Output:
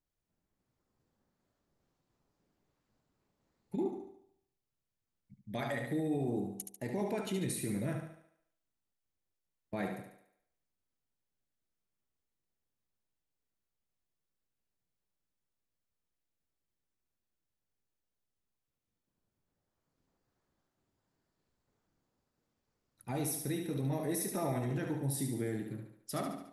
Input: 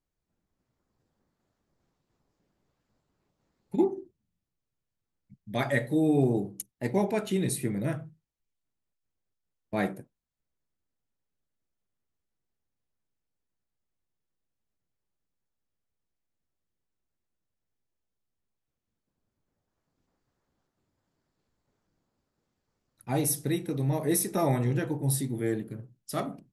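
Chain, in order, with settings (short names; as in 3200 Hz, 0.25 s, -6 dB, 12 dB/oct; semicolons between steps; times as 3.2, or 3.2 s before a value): limiter -23 dBFS, peak gain reduction 10 dB; thinning echo 72 ms, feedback 51%, high-pass 180 Hz, level -5.5 dB; gain -4 dB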